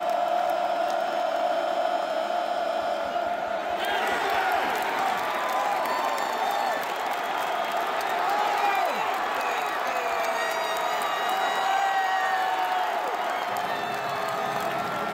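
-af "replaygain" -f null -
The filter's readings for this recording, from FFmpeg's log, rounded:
track_gain = +9.3 dB
track_peak = 0.152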